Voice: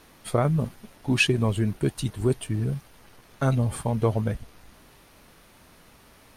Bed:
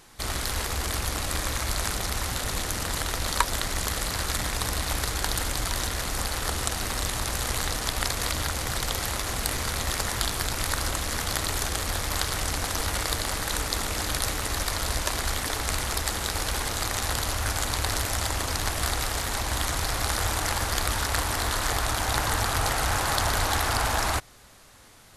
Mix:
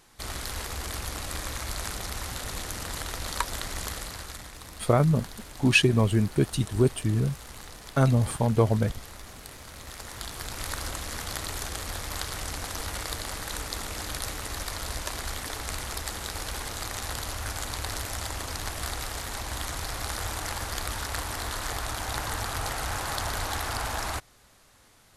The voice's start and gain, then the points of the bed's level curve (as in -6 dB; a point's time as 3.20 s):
4.55 s, +1.5 dB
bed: 3.88 s -5.5 dB
4.60 s -16.5 dB
9.69 s -16.5 dB
10.66 s -6 dB